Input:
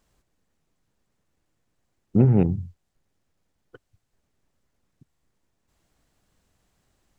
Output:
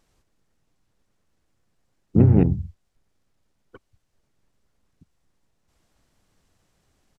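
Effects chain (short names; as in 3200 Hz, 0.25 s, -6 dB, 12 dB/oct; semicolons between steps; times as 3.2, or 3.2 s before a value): downsampling 32000 Hz; harmoniser -5 st -2 dB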